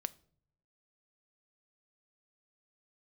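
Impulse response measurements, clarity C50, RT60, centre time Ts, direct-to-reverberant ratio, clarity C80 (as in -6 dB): 22.0 dB, not exponential, 2 ms, 15.0 dB, 26.5 dB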